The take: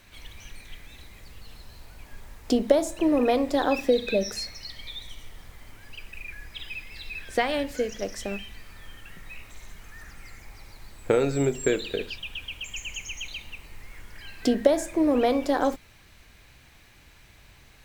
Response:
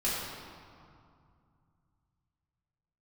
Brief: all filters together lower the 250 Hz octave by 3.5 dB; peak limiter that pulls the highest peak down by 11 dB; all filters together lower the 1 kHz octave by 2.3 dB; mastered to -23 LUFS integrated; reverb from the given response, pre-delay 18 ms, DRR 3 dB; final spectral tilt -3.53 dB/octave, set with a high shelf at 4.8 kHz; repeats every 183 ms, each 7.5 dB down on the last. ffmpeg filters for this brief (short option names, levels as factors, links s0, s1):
-filter_complex "[0:a]equalizer=f=250:t=o:g=-4,equalizer=f=1000:t=o:g=-3.5,highshelf=f=4800:g=6.5,alimiter=limit=0.119:level=0:latency=1,aecho=1:1:183|366|549|732|915:0.422|0.177|0.0744|0.0312|0.0131,asplit=2[s0][s1];[1:a]atrim=start_sample=2205,adelay=18[s2];[s1][s2]afir=irnorm=-1:irlink=0,volume=0.266[s3];[s0][s3]amix=inputs=2:normalize=0,volume=1.88"